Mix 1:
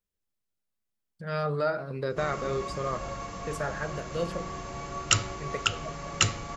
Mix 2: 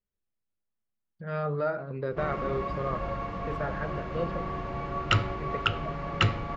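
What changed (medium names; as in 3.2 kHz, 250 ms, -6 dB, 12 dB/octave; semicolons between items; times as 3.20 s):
background +5.0 dB; master: add distance through air 380 m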